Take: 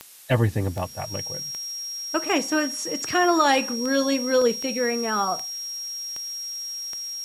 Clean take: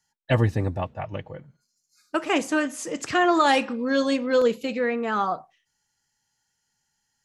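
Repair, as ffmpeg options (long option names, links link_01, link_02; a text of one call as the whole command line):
ffmpeg -i in.wav -af "adeclick=threshold=4,bandreject=frequency=5600:width=30,afftdn=noise_reduction=30:noise_floor=-33" out.wav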